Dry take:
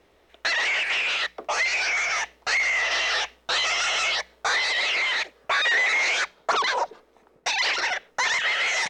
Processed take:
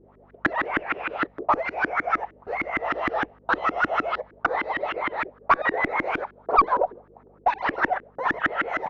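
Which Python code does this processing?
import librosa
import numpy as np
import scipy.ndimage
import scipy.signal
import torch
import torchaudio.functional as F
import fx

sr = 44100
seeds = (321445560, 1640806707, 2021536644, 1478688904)

y = fx.filter_lfo_lowpass(x, sr, shape='saw_up', hz=6.5, low_hz=290.0, high_hz=1600.0, q=4.4)
y = fx.cheby_harmonics(y, sr, harmonics=(2, 4), levels_db=(-13, -26), full_scale_db=-6.5)
y = fx.dmg_buzz(y, sr, base_hz=50.0, harmonics=5, level_db=-59.0, tilt_db=-1, odd_only=False)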